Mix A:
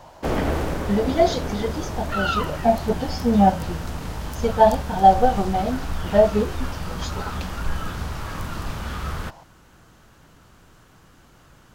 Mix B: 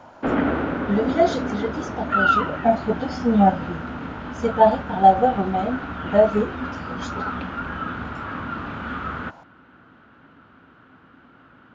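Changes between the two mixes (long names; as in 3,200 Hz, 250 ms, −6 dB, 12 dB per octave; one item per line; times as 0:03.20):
background: add loudspeaker in its box 110–3,600 Hz, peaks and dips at 140 Hz −4 dB, 260 Hz +10 dB, 1,400 Hz +9 dB
master: add parametric band 5,100 Hz −6.5 dB 1.2 octaves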